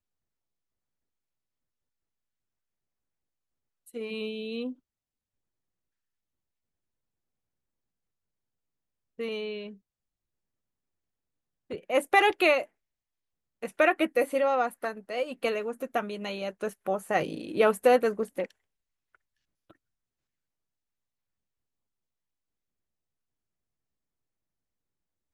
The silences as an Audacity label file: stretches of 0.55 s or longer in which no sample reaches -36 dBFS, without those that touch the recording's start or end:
4.720000	9.190000	silence
9.690000	11.710000	silence
12.640000	13.630000	silence